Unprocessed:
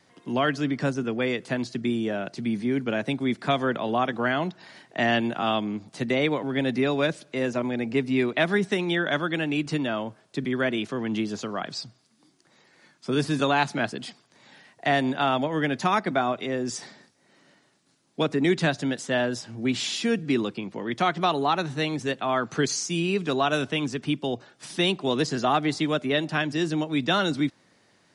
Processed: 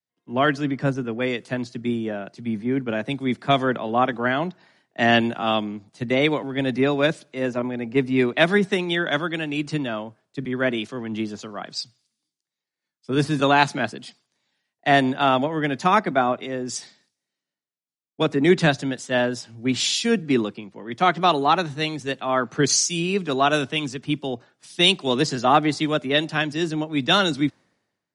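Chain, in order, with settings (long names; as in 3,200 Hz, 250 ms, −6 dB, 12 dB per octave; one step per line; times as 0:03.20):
multiband upward and downward expander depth 100%
level +3 dB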